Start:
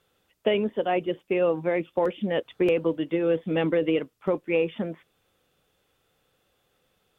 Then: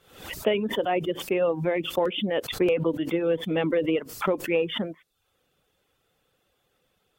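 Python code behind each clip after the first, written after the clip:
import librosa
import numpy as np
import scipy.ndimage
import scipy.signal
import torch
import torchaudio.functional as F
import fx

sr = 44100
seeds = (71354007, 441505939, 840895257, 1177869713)

y = fx.dereverb_blind(x, sr, rt60_s=0.54)
y = fx.pre_swell(y, sr, db_per_s=96.0)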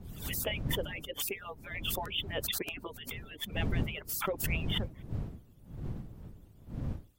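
y = fx.hpss_only(x, sr, part='percussive')
y = fx.dmg_wind(y, sr, seeds[0], corner_hz=140.0, level_db=-30.0)
y = scipy.signal.lfilter([1.0, -0.8], [1.0], y)
y = F.gain(torch.from_numpy(y), 5.0).numpy()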